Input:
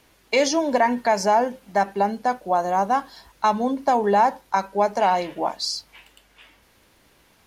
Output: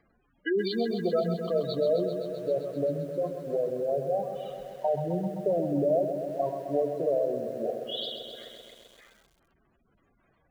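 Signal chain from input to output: varispeed -29%; spectral gate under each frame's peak -10 dB strong; lo-fi delay 0.13 s, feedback 80%, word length 8-bit, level -8.5 dB; gain -7.5 dB

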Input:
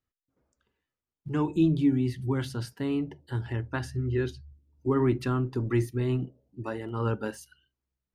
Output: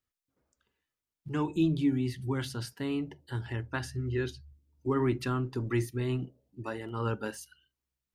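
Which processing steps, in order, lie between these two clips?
tilt shelf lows -3 dB, about 1300 Hz; gain -1 dB

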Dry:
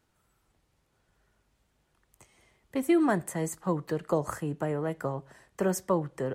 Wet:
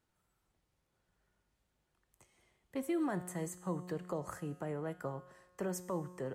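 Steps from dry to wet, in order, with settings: limiter -19 dBFS, peak gain reduction 5 dB; resonator 180 Hz, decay 1.4 s, mix 70%; gain +1.5 dB

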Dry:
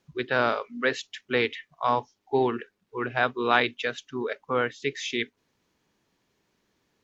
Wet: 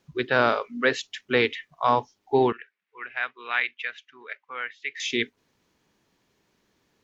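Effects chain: 2.52–5 band-pass 2100 Hz, Q 2.6; gain +3 dB

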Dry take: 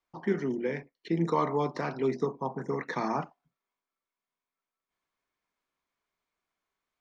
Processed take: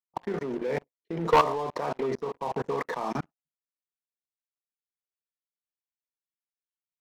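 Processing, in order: gate -43 dBFS, range -9 dB; band shelf 720 Hz +10 dB, from 3.09 s -8 dB; level quantiser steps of 17 dB; sample leveller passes 3; tremolo triangle 1.6 Hz, depth 45%; gain -4.5 dB

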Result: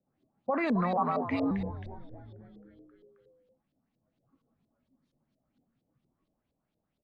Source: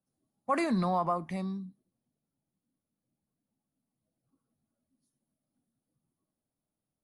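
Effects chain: limiter -28.5 dBFS, peak gain reduction 10.5 dB; frequency-shifting echo 0.267 s, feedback 59%, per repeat -100 Hz, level -11.5 dB; LFO low-pass saw up 4.3 Hz 430–4100 Hz; 0.97–1.51 frequency shift +84 Hz; gain +5.5 dB

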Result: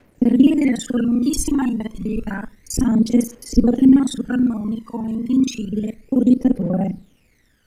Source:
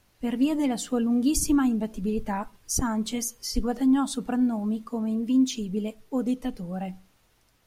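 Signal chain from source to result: local time reversal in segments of 36 ms; phaser 0.3 Hz, delay 1.1 ms, feedback 74%; ten-band EQ 250 Hz +9 dB, 500 Hz +8 dB, 2000 Hz +9 dB, 8000 Hz +3 dB; gain -4 dB

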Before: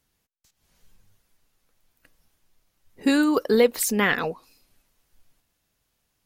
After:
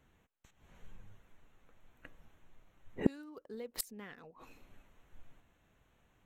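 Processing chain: Wiener smoothing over 9 samples; 3.37–4.31 low shelf 450 Hz +6 dB; flipped gate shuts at -17 dBFS, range -37 dB; gain +7 dB

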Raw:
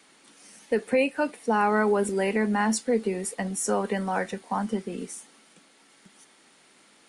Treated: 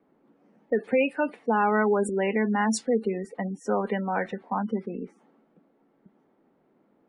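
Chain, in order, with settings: spectral gate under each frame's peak -25 dB strong; low-pass opened by the level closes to 560 Hz, open at -19.5 dBFS

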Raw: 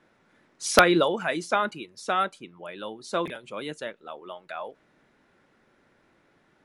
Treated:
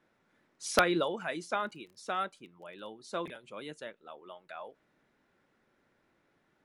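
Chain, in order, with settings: 1.59–2.86 crackle 49/s -> 19/s -41 dBFS; gain -8.5 dB

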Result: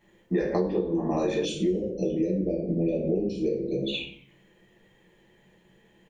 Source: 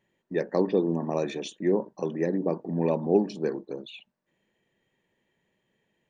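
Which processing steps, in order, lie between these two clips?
reverb RT60 0.50 s, pre-delay 5 ms, DRR -6 dB; compressor 16:1, threshold -28 dBFS, peak gain reduction 20.5 dB; 1.45–3.94 Chebyshev band-stop 600–2400 Hz, order 3; frequency-shifting echo 92 ms, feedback 46%, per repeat -130 Hz, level -19 dB; gain +6 dB

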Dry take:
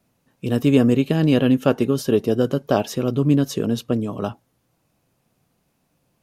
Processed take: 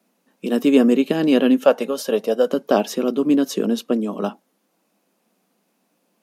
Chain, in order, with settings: elliptic high-pass 190 Hz, stop band 40 dB; 1.64–2.52 resonant low shelf 440 Hz -6 dB, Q 3; gain +2.5 dB

